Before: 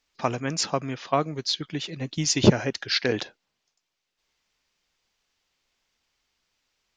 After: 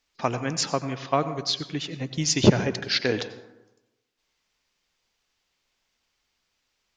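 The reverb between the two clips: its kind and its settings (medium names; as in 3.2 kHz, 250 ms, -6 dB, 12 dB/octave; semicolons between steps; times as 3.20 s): plate-style reverb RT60 1 s, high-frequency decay 0.45×, pre-delay 75 ms, DRR 12 dB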